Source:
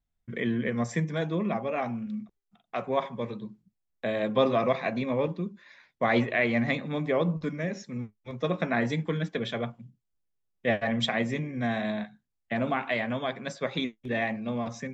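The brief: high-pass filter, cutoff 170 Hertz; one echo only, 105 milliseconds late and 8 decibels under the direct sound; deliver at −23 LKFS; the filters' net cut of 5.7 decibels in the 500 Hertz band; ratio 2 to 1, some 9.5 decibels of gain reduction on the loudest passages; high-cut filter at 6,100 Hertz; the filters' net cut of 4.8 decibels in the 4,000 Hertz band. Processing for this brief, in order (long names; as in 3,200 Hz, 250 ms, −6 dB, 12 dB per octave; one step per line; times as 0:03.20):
high-pass filter 170 Hz
low-pass filter 6,100 Hz
parametric band 500 Hz −7 dB
parametric band 4,000 Hz −5.5 dB
downward compressor 2 to 1, threshold −41 dBFS
single-tap delay 105 ms −8 dB
level +17 dB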